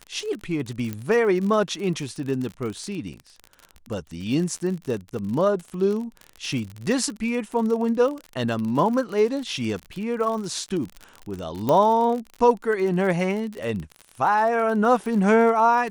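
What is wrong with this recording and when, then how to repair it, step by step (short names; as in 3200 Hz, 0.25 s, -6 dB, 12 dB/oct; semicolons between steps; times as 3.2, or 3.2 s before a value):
crackle 46/s -29 dBFS
0.93 pop -16 dBFS
11.69 pop -10 dBFS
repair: de-click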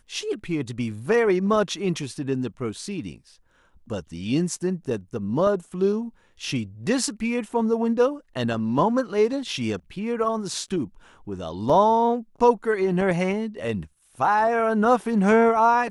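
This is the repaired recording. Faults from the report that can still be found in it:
11.69 pop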